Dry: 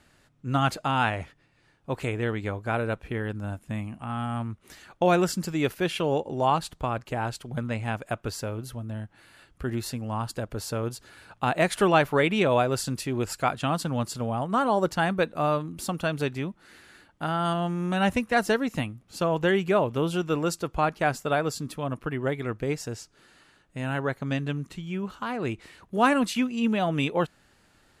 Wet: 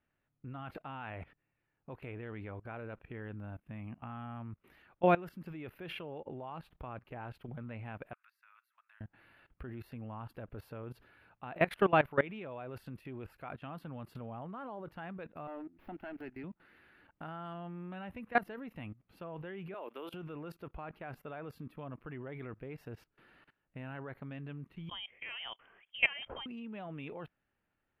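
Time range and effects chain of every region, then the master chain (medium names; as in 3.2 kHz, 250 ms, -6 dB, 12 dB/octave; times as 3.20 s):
8.13–9.01 s: steep high-pass 1.2 kHz + peaking EQ 3.1 kHz -9.5 dB 0.26 oct + compression 2:1, threshold -54 dBFS
15.47–16.44 s: static phaser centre 750 Hz, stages 8 + sliding maximum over 5 samples
19.74–20.14 s: high-pass 280 Hz 24 dB/octave + tilt EQ +2.5 dB/octave
24.89–26.46 s: high-pass 310 Hz 6 dB/octave + frequency inversion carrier 3.4 kHz
whole clip: FFT filter 2.6 kHz 0 dB, 7.4 kHz -29 dB, 13 kHz -5 dB; level held to a coarse grid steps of 20 dB; trim -3.5 dB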